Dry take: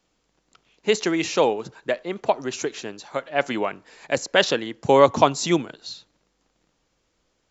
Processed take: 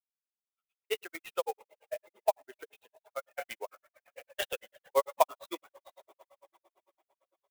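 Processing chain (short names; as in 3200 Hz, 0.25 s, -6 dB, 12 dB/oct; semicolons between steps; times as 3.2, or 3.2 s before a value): per-bin expansion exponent 1.5; Chebyshev high-pass 540 Hz, order 3; two-slope reverb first 0.58 s, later 3.9 s, from -18 dB, DRR 9 dB; grains 75 ms, grains 8.9/s, spray 16 ms, pitch spread up and down by 0 st; downsampling 8000 Hz; reverb removal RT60 0.85 s; clock jitter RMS 0.032 ms; gain -3 dB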